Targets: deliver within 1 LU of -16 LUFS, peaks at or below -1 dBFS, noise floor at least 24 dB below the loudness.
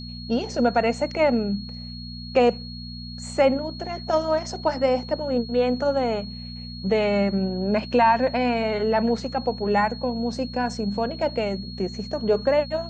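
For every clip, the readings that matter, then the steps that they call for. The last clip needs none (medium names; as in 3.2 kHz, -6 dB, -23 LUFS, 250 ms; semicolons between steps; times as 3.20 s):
hum 60 Hz; highest harmonic 240 Hz; hum level -34 dBFS; steady tone 4.3 kHz; tone level -39 dBFS; loudness -23.5 LUFS; peak level -7.0 dBFS; loudness target -16.0 LUFS
-> de-hum 60 Hz, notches 4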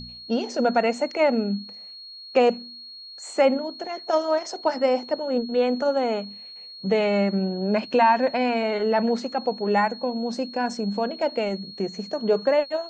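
hum not found; steady tone 4.3 kHz; tone level -39 dBFS
-> band-stop 4.3 kHz, Q 30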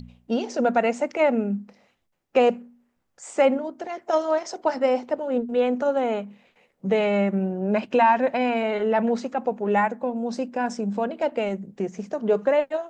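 steady tone not found; loudness -24.0 LUFS; peak level -7.0 dBFS; loudness target -16.0 LUFS
-> trim +8 dB; peak limiter -1 dBFS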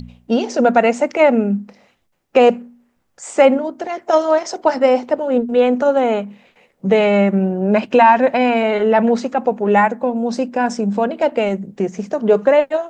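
loudness -16.0 LUFS; peak level -1.0 dBFS; noise floor -64 dBFS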